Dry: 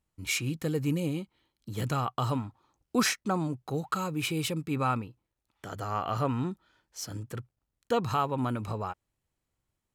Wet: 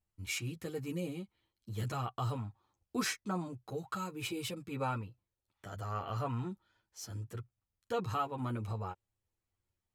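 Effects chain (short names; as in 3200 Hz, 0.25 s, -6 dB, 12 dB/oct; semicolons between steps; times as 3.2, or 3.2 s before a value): chorus voices 6, 0.43 Hz, delay 10 ms, depth 1.5 ms; gain -4.5 dB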